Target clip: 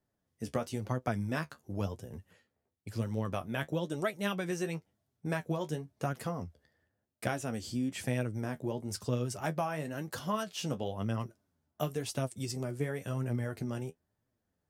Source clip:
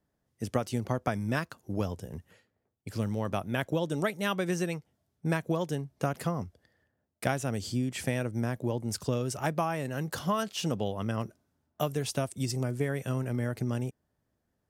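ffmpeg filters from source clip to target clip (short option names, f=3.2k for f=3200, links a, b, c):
-af "flanger=delay=7.5:depth=6.8:regen=41:speed=0.98:shape=triangular"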